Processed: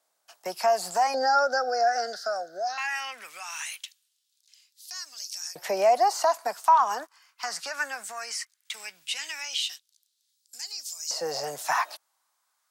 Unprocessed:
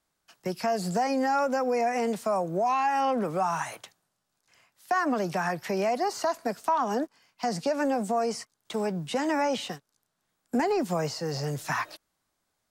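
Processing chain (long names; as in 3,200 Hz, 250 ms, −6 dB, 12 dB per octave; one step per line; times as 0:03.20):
bass and treble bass +8 dB, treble +6 dB
auto-filter high-pass saw up 0.18 Hz 580–5,800 Hz
0:01.14–0:02.78: drawn EQ curve 120 Hz 0 dB, 730 Hz +12 dB, 1,000 Hz −21 dB, 1,500 Hz +8 dB, 2,400 Hz −23 dB, 4,800 Hz +11 dB, 8,000 Hz −14 dB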